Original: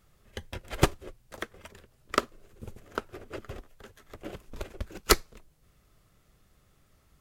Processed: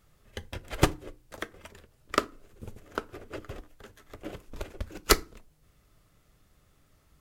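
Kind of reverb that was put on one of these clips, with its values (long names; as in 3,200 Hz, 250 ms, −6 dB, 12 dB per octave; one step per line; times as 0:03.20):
feedback delay network reverb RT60 0.32 s, low-frequency decay 1.4×, high-frequency decay 0.65×, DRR 14.5 dB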